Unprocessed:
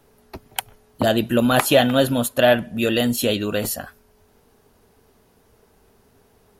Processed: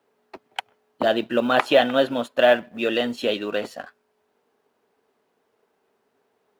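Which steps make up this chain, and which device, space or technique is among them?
phone line with mismatched companding (band-pass 320–3300 Hz; companding laws mixed up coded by A)

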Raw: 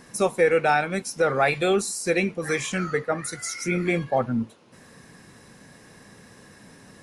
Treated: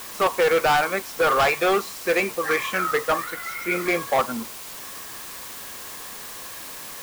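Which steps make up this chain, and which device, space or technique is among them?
drive-through speaker (band-pass 440–2800 Hz; peaking EQ 1.1 kHz +10 dB 0.41 oct; hard clipper -21 dBFS, distortion -8 dB; white noise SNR 13 dB); 3.24–3.72 s: peaking EQ 6 kHz -5.5 dB; trim +5.5 dB

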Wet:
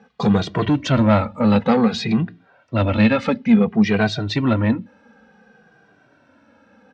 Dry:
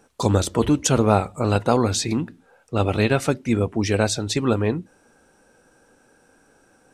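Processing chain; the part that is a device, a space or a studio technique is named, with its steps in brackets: barber-pole flanger into a guitar amplifier (endless flanger 2 ms -0.56 Hz; saturation -16.5 dBFS, distortion -15 dB; cabinet simulation 88–4100 Hz, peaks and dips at 210 Hz +9 dB, 360 Hz -9 dB, 1.9 kHz +3 dB); trim +7 dB

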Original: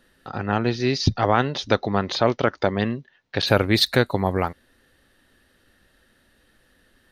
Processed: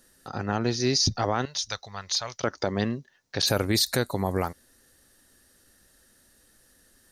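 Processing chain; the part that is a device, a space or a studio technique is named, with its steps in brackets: 1.45–2.44 s: amplifier tone stack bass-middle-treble 10-0-10; over-bright horn tweeter (resonant high shelf 4.5 kHz +12 dB, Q 1.5; peak limiter -9.5 dBFS, peak gain reduction 9 dB); trim -3 dB

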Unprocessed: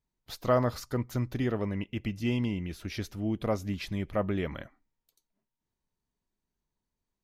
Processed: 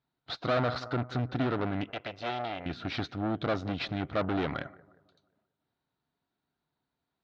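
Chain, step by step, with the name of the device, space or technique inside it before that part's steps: analogue delay pedal into a guitar amplifier (bucket-brigade echo 178 ms, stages 2048, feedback 44%, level -23.5 dB; valve stage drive 35 dB, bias 0.75; cabinet simulation 100–4300 Hz, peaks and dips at 140 Hz +5 dB, 200 Hz -4 dB, 280 Hz +5 dB, 720 Hz +9 dB, 1.4 kHz +10 dB, 3.9 kHz +7 dB); 1.90–2.66 s: resonant low shelf 360 Hz -12.5 dB, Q 1.5; trim +7 dB

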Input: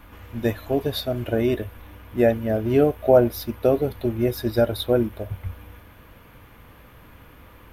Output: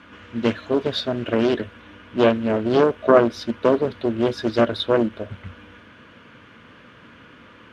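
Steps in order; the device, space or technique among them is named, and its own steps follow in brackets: full-range speaker at full volume (loudspeaker Doppler distortion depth 0.78 ms; cabinet simulation 150–6800 Hz, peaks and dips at 230 Hz +5 dB, 790 Hz -8 dB, 1.5 kHz +6 dB, 3 kHz +5 dB); trim +2.5 dB

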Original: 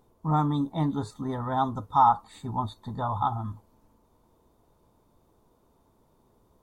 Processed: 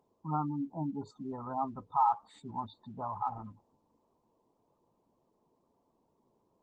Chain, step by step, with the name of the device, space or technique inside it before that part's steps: noise-suppressed video call (high-pass 170 Hz 12 dB/octave; spectral gate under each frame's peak -15 dB strong; trim -7 dB; Opus 16 kbps 48 kHz)

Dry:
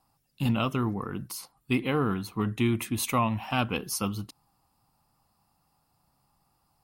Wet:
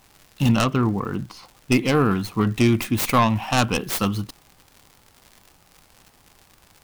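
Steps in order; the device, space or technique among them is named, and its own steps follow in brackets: 0.64–1.72 s: distance through air 210 m; record under a worn stylus (tracing distortion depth 0.29 ms; crackle 120 per s -43 dBFS; pink noise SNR 35 dB); trim +8 dB

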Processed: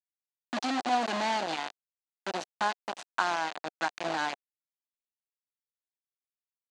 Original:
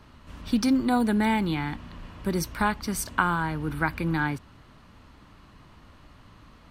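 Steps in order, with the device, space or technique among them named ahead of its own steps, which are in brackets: hand-held game console (bit crusher 4-bit; cabinet simulation 430–5900 Hz, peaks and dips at 440 Hz -8 dB, 730 Hz +5 dB, 1.3 kHz -4 dB, 2.2 kHz -5 dB, 3.3 kHz -3 dB, 5.4 kHz -7 dB); trim -3 dB

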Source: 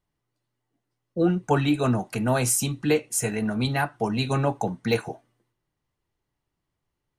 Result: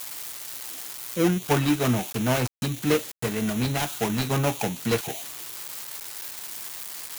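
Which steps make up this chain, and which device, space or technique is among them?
budget class-D amplifier (dead-time distortion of 0.29 ms; zero-crossing glitches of -17.5 dBFS)

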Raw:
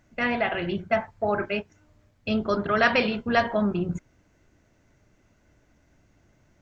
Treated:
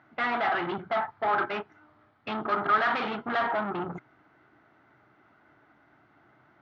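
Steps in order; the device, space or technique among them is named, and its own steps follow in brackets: guitar amplifier (valve stage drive 32 dB, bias 0.45; tone controls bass -14 dB, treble -10 dB; cabinet simulation 100–4000 Hz, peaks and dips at 130 Hz +8 dB, 310 Hz +3 dB, 530 Hz -9 dB, 800 Hz +6 dB, 1.3 kHz +10 dB, 2.6 kHz -6 dB); trim +7 dB

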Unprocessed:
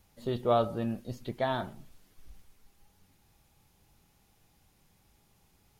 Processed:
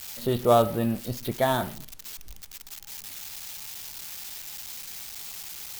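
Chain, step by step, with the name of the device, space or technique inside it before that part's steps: budget class-D amplifier (dead-time distortion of 0.076 ms; zero-crossing glitches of -30.5 dBFS); trim +6.5 dB

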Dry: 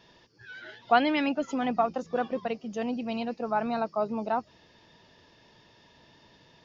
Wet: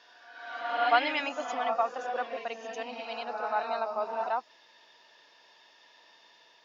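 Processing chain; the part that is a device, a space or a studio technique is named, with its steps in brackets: ghost voice (reverse; reverberation RT60 1.1 s, pre-delay 80 ms, DRR 3 dB; reverse; high-pass 710 Hz 12 dB/octave)

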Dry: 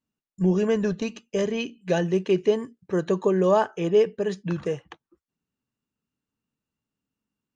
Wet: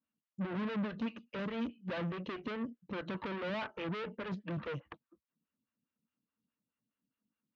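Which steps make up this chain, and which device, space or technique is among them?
vibe pedal into a guitar amplifier (lamp-driven phase shifter 4.8 Hz; valve stage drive 37 dB, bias 0.65; cabinet simulation 78–3700 Hz, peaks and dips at 220 Hz +4 dB, 400 Hz -10 dB, 780 Hz -9 dB); trim +3.5 dB

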